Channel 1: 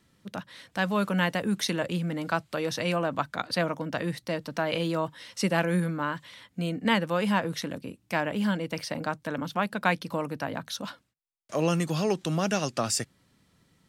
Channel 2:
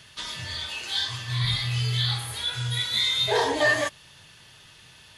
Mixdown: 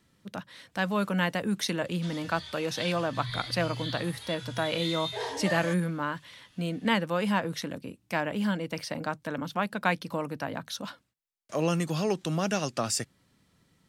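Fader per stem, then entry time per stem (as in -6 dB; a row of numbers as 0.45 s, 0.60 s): -1.5 dB, -11.5 dB; 0.00 s, 1.85 s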